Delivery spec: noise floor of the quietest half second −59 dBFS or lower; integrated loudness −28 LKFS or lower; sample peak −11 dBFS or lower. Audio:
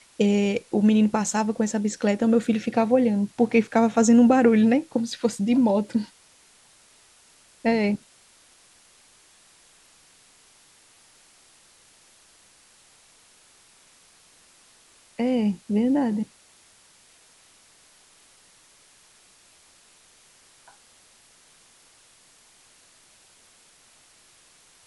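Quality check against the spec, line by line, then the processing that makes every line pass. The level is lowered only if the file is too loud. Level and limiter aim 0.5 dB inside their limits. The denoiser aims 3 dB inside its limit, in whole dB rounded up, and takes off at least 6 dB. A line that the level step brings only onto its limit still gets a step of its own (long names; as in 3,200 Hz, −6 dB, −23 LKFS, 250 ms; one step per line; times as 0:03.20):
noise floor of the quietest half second −56 dBFS: out of spec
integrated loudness −22.0 LKFS: out of spec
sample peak −6.0 dBFS: out of spec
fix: level −6.5 dB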